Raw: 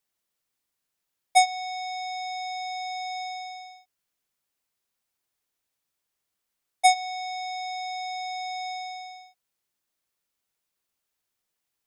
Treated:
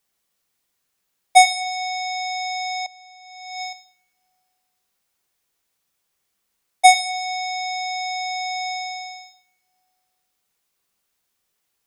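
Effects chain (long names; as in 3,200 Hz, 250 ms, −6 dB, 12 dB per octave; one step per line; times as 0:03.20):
coupled-rooms reverb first 0.64 s, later 2.3 s, from −27 dB, DRR 5 dB
0:02.86–0:03.73: compressor whose output falls as the input rises −42 dBFS, ratio −0.5
level +6.5 dB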